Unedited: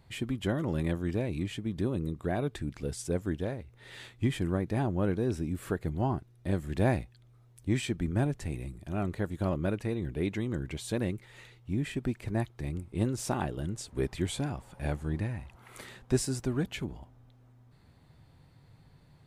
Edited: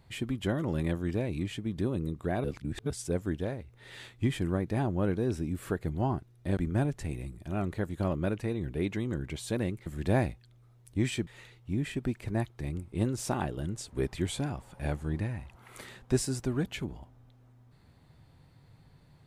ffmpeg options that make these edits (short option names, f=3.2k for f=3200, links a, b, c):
-filter_complex "[0:a]asplit=6[a][b][c][d][e][f];[a]atrim=end=2.442[g];[b]atrim=start=2.438:end=2.902,asetpts=PTS-STARTPTS,areverse[h];[c]atrim=start=2.898:end=6.572[i];[d]atrim=start=7.978:end=11.272[j];[e]atrim=start=6.568:end=7.982[k];[f]atrim=start=11.268[l];[g][h]acrossfade=d=0.004:c1=hsin:c2=hsin[m];[m][i]acrossfade=d=0.004:c1=hsin:c2=hsin[n];[n][j]acrossfade=d=0.004:c1=hsin:c2=hsin[o];[o][k]acrossfade=d=0.004:c1=hsin:c2=hsin[p];[p][l]acrossfade=d=0.004:c1=hsin:c2=hsin"